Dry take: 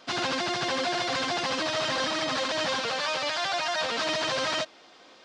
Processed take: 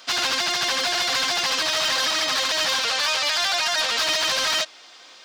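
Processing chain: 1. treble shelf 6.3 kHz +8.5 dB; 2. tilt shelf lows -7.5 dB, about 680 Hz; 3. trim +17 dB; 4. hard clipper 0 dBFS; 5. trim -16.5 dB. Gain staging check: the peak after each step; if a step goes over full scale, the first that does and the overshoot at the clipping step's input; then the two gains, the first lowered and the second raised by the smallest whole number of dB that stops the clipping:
-14.5 dBFS, -9.0 dBFS, +8.0 dBFS, 0.0 dBFS, -16.5 dBFS; step 3, 8.0 dB; step 3 +9 dB, step 5 -8.5 dB

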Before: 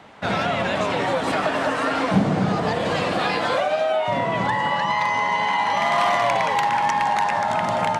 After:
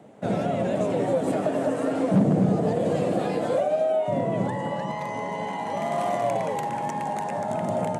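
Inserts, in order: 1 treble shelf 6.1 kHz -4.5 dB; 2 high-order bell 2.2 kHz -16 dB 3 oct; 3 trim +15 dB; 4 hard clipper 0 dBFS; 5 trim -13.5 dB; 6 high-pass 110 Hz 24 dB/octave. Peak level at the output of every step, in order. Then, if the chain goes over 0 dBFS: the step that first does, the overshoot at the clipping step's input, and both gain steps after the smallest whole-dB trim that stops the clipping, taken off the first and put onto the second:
-7.5 dBFS, -7.0 dBFS, +8.0 dBFS, 0.0 dBFS, -13.5 dBFS, -8.5 dBFS; step 3, 8.0 dB; step 3 +7 dB, step 5 -5.5 dB

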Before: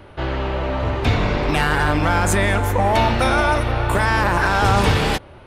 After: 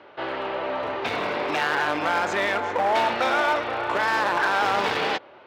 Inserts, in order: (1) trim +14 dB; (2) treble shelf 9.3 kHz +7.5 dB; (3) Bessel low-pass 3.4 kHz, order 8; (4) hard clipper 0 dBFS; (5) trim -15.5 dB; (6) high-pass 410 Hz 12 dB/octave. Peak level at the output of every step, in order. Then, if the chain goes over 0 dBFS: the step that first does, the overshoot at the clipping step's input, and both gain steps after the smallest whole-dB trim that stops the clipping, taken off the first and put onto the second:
+8.5 dBFS, +8.5 dBFS, +8.5 dBFS, 0.0 dBFS, -15.5 dBFS, -10.5 dBFS; step 1, 8.5 dB; step 1 +5 dB, step 5 -6.5 dB

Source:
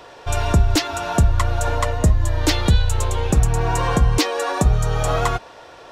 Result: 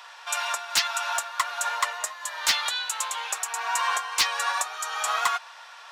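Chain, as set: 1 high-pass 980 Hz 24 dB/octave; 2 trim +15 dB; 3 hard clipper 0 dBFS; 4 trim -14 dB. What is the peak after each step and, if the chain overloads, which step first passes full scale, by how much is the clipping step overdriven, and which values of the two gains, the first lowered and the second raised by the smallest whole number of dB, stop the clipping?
-6.5 dBFS, +8.5 dBFS, 0.0 dBFS, -14.0 dBFS; step 2, 8.5 dB; step 2 +6 dB, step 4 -5 dB

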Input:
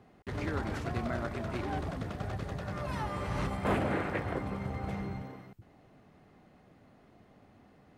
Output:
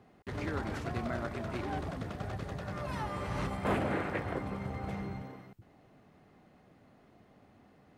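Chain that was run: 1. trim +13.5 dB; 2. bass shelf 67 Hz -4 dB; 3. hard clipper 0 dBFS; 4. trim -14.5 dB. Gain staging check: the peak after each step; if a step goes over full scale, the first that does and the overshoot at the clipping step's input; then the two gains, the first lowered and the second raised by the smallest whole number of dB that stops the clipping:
-5.0 dBFS, -5.0 dBFS, -5.0 dBFS, -19.5 dBFS; nothing clips

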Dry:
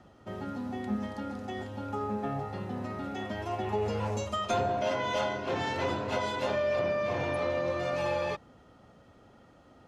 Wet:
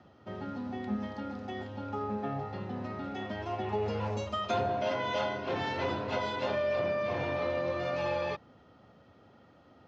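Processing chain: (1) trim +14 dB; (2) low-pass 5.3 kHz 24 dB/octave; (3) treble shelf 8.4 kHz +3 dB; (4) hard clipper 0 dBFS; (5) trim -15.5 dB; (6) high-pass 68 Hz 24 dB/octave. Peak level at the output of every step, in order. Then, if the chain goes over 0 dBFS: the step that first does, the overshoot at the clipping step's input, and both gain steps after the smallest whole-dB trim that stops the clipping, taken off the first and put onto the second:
-3.5 dBFS, -3.5 dBFS, -3.5 dBFS, -3.5 dBFS, -19.0 dBFS, -19.5 dBFS; nothing clips

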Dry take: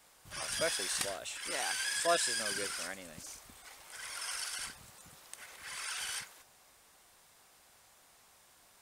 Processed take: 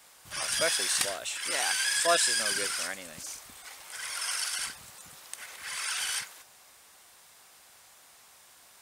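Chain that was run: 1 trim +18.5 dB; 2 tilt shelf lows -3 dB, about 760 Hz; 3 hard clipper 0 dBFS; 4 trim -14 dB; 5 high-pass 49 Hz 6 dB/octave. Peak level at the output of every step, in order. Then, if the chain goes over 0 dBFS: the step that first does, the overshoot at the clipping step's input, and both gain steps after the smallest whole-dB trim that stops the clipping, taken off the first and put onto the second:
+1.5 dBFS, +3.0 dBFS, 0.0 dBFS, -14.0 dBFS, -13.5 dBFS; step 1, 3.0 dB; step 1 +15.5 dB, step 4 -11 dB

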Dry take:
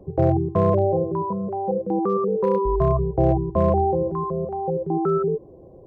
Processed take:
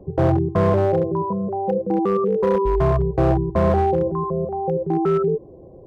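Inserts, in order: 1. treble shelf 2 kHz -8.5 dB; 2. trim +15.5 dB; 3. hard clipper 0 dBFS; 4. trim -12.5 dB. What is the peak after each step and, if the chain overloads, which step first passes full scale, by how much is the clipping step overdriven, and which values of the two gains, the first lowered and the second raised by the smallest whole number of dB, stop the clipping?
-9.0 dBFS, +6.5 dBFS, 0.0 dBFS, -12.5 dBFS; step 2, 6.5 dB; step 2 +8.5 dB, step 4 -5.5 dB

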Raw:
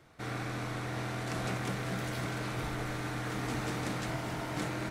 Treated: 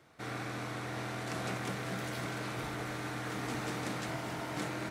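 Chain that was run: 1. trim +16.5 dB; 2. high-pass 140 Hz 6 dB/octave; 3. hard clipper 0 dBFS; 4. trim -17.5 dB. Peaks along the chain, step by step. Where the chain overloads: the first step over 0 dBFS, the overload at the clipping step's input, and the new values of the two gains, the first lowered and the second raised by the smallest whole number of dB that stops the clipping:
-4.0 dBFS, -5.5 dBFS, -5.5 dBFS, -23.0 dBFS; nothing clips

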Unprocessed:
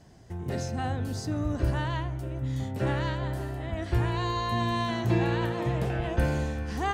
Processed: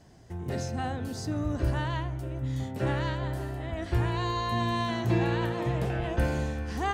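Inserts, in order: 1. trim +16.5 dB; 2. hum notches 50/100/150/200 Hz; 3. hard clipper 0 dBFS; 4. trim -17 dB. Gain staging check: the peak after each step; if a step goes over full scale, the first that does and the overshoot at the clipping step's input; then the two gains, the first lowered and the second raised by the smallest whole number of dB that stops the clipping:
+3.5 dBFS, +3.0 dBFS, 0.0 dBFS, -17.0 dBFS; step 1, 3.0 dB; step 1 +13.5 dB, step 4 -14 dB

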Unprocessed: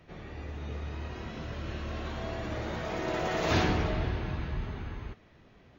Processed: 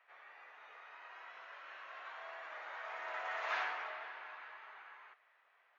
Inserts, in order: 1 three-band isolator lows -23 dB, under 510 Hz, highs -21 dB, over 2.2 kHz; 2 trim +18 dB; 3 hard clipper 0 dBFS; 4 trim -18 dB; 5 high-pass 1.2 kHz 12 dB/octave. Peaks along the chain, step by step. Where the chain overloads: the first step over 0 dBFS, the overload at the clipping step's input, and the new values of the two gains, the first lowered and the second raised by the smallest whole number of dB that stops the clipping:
-21.5 dBFS, -3.5 dBFS, -3.5 dBFS, -21.5 dBFS, -26.5 dBFS; nothing clips

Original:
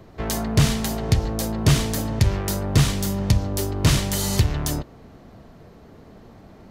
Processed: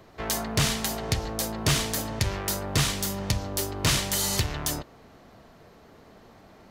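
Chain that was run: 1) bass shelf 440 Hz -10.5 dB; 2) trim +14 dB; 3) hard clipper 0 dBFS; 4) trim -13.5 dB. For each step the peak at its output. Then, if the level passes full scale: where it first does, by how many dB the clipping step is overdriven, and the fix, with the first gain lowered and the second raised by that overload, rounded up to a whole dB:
-8.5 dBFS, +5.5 dBFS, 0.0 dBFS, -13.5 dBFS; step 2, 5.5 dB; step 2 +8 dB, step 4 -7.5 dB

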